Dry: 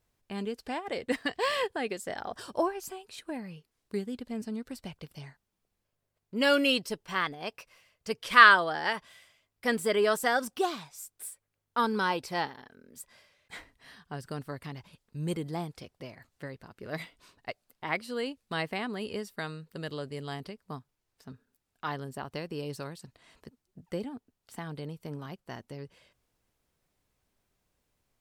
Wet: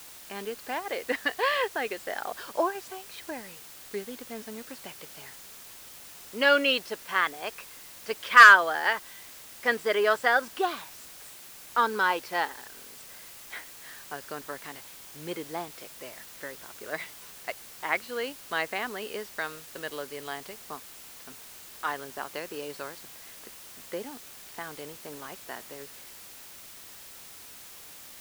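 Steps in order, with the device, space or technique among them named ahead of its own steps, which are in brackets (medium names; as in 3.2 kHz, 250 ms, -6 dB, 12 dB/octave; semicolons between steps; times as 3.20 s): drive-through speaker (band-pass 390–4000 Hz; peaking EQ 1.6 kHz +4 dB; hard clipper -7.5 dBFS, distortion -17 dB; white noise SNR 17 dB); trim +2.5 dB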